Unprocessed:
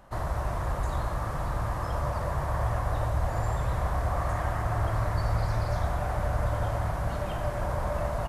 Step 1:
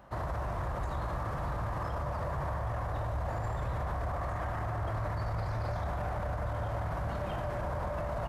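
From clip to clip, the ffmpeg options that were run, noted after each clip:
-af "highpass=47,equalizer=f=10k:t=o:w=1.7:g=-9,alimiter=level_in=3dB:limit=-24dB:level=0:latency=1:release=20,volume=-3dB"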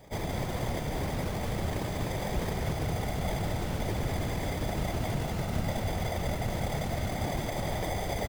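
-af "acrusher=samples=32:mix=1:aa=0.000001,afftfilt=real='hypot(re,im)*cos(2*PI*random(0))':imag='hypot(re,im)*sin(2*PI*random(1))':win_size=512:overlap=0.75,aecho=1:1:194:0.501,volume=8dB"

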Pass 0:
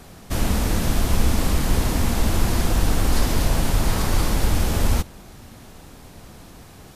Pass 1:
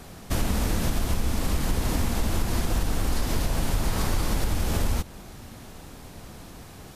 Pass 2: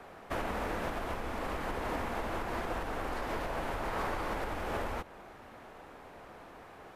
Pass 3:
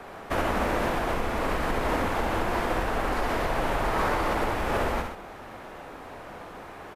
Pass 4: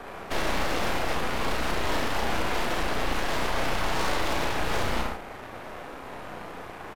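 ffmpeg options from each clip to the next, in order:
-af "acompressor=threshold=-20dB:ratio=6"
-filter_complex "[0:a]acrossover=split=370 2400:gain=0.141 1 0.1[a][b][c];[a][b][c]amix=inputs=3:normalize=0"
-af "aecho=1:1:67.06|125.4:0.562|0.355,volume=7.5dB"
-filter_complex "[0:a]aeval=exprs='0.2*(cos(1*acos(clip(val(0)/0.2,-1,1)))-cos(1*PI/2))+0.0501*(cos(8*acos(clip(val(0)/0.2,-1,1)))-cos(8*PI/2))':c=same,asoftclip=type=tanh:threshold=-21.5dB,asplit=2[a][b];[b]adelay=34,volume=-4.5dB[c];[a][c]amix=inputs=2:normalize=0"

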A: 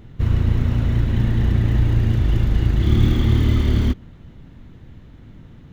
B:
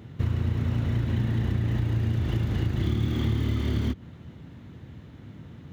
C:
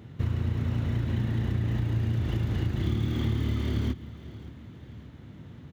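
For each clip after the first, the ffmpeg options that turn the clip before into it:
-af "highpass=f=74:w=0.5412,highpass=f=74:w=1.3066,acompressor=threshold=-22dB:ratio=6"
-af "aecho=1:1:577|1154|1731|2308:0.133|0.064|0.0307|0.0147,volume=-2dB"

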